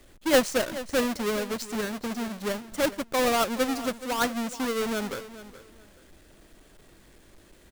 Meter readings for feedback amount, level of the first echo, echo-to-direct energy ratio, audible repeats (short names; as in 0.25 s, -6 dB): 22%, -15.0 dB, -15.0 dB, 2